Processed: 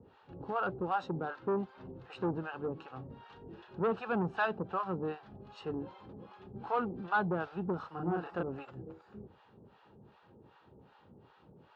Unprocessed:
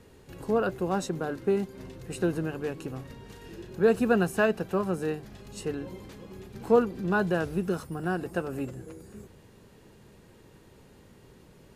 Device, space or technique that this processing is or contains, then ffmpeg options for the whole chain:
guitar amplifier with harmonic tremolo: -filter_complex "[0:a]acrossover=split=670[a][b];[a]aeval=exprs='val(0)*(1-1/2+1/2*cos(2*PI*2.6*n/s))':c=same[c];[b]aeval=exprs='val(0)*(1-1/2-1/2*cos(2*PI*2.6*n/s))':c=same[d];[c][d]amix=inputs=2:normalize=0,asoftclip=type=tanh:threshold=-26.5dB,highpass=78,equalizer=f=840:t=q:w=4:g=9,equalizer=f=1.3k:t=q:w=4:g=7,equalizer=f=2.1k:t=q:w=4:g=-8,lowpass=f=3.6k:w=0.5412,lowpass=f=3.6k:w=1.3066,asettb=1/sr,asplit=3[e][f][g];[e]atrim=end=7.794[h];[f]atrim=start=7.79:end=8.43,asetpts=PTS-STARTPTS,afade=t=in:d=0.004:c=qsin,afade=t=out:st=0.636:d=0.004:c=qsin,asplit=2[i][j];[j]adelay=35,volume=-2dB[k];[i][k]amix=inputs=2:normalize=0,atrim=end_sample=28224[l];[g]atrim=start=8.426[m];[h][l]acrossfade=d=0.004:c1=hsin:c2=qsin[n];[n][m]acrossfade=d=0.004:c1=qsin:c2=hsin,volume=-1dB"

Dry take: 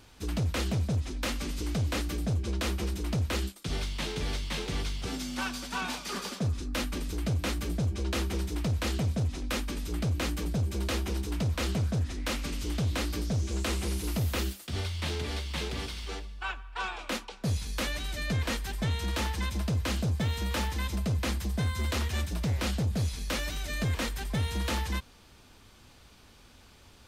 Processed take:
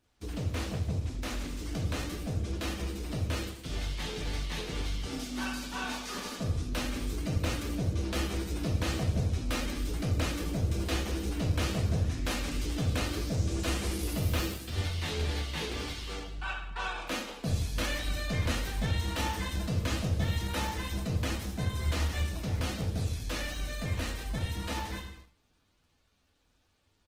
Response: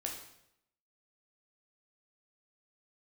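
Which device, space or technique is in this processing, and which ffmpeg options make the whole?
speakerphone in a meeting room: -filter_complex "[1:a]atrim=start_sample=2205[a];[0:a][a]afir=irnorm=-1:irlink=0,asplit=2[b][c];[c]adelay=310,highpass=300,lowpass=3.4k,asoftclip=type=hard:threshold=-27dB,volume=-28dB[d];[b][d]amix=inputs=2:normalize=0,dynaudnorm=f=630:g=21:m=3dB,agate=range=-12dB:threshold=-47dB:ratio=16:detection=peak,volume=-3.5dB" -ar 48000 -c:a libopus -b:a 16k

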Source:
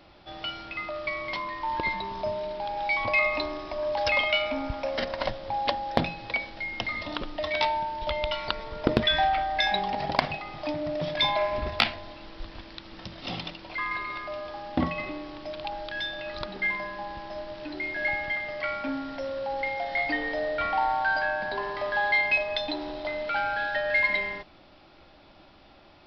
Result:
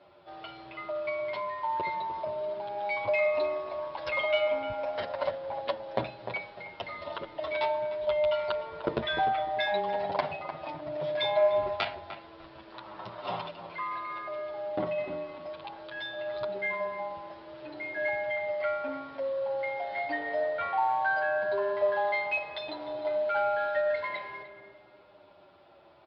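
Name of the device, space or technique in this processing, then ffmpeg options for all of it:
barber-pole flanger into a guitar amplifier: -filter_complex "[0:a]asettb=1/sr,asplit=3[a][b][c];[a]atrim=end=12.724[d];[b]atrim=start=12.72:end=13.47,asetpts=PTS-STARTPTS,afade=t=in:d=0.004:c=qsin,afade=t=out:st=0.746:d=0.004:c=qsin,equalizer=f=1k:t=o:w=1.2:g=12.5[e];[c]atrim=start=13.466[f];[d][e]acrossfade=d=0.004:c1=hsin:c2=qsin[g];[g][f]acrossfade=d=0.004:c1=qsin:c2=hsin,asplit=2[h][i];[i]adelay=301,lowpass=f=1.8k:p=1,volume=-10.5dB,asplit=2[j][k];[k]adelay=301,lowpass=f=1.8k:p=1,volume=0.25,asplit=2[l][m];[m]adelay=301,lowpass=f=1.8k:p=1,volume=0.25[n];[h][j][l][n]amix=inputs=4:normalize=0,asplit=2[o][p];[p]adelay=8.2,afreqshift=-0.59[q];[o][q]amix=inputs=2:normalize=1,asoftclip=type=tanh:threshold=-14dB,highpass=88,equalizer=f=130:t=q:w=4:g=4,equalizer=f=250:t=q:w=4:g=-5,equalizer=f=400:t=q:w=4:g=8,equalizer=f=600:t=q:w=4:g=10,equalizer=f=970:t=q:w=4:g=7,equalizer=f=1.4k:t=q:w=4:g=5,lowpass=f=4.4k:w=0.5412,lowpass=f=4.4k:w=1.3066,volume=-5.5dB"

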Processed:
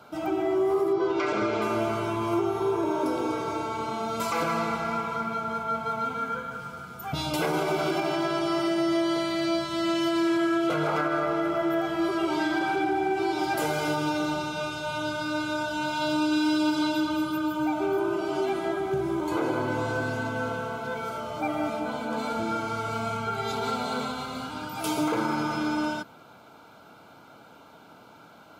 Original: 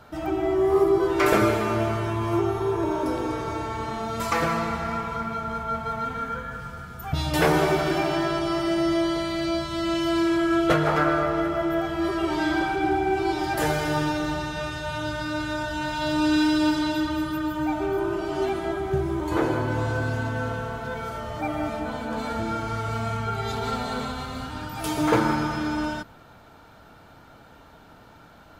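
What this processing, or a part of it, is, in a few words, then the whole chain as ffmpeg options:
PA system with an anti-feedback notch: -filter_complex "[0:a]highpass=170,asuperstop=centerf=1800:order=20:qfactor=7.1,alimiter=limit=-17.5dB:level=0:latency=1:release=103,asettb=1/sr,asplit=3[a][b][c];[a]atrim=end=0.934[d];[b]atrim=start=0.93:end=1.62,asetpts=PTS-STARTPTS,afade=t=in:d=0.004:c=qsin,afade=t=out:st=0.686:d=0.004:c=qsin,lowpass=f=6k:w=0.5412,lowpass=f=6k:w=1.3066[e];[c]atrim=start=1.616[f];[d][e]acrossfade=d=0.004:c1=hsin:c2=qsin[g];[g][f]acrossfade=d=0.004:c1=qsin:c2=hsin"

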